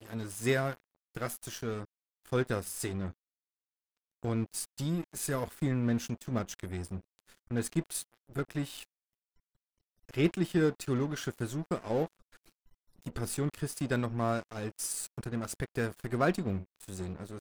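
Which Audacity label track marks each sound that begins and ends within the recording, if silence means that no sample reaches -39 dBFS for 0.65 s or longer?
4.240000	8.830000	sound
10.090000	12.060000	sound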